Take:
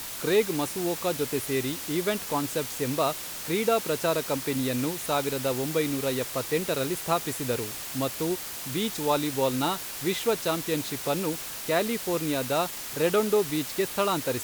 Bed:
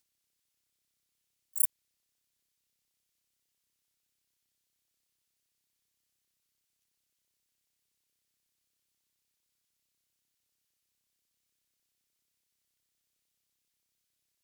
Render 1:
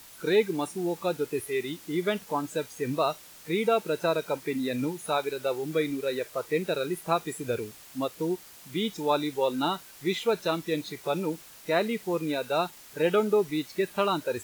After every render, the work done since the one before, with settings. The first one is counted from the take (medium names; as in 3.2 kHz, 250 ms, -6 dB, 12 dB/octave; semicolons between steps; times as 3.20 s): noise print and reduce 13 dB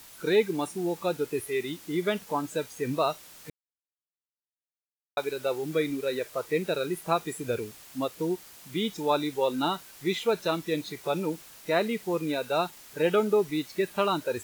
3.50–5.17 s: mute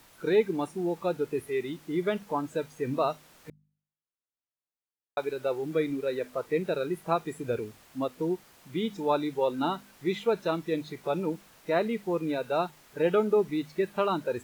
treble shelf 2.8 kHz -11 dB; de-hum 50.48 Hz, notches 5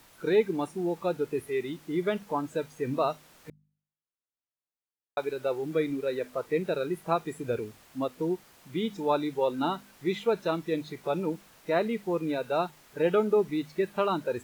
no audible change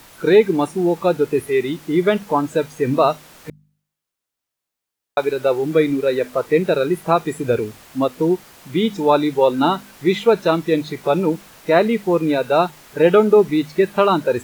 trim +12 dB; peak limiter -3 dBFS, peak gain reduction 2 dB